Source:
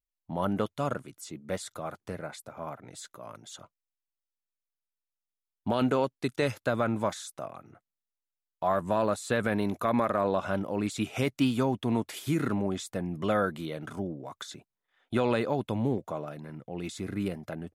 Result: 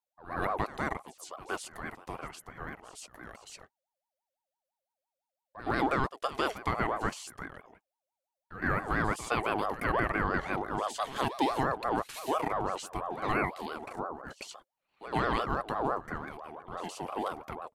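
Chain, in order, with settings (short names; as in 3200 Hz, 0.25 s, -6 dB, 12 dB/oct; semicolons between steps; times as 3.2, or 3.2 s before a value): pre-echo 0.116 s -14.5 dB; ring modulator with a swept carrier 740 Hz, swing 30%, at 5.9 Hz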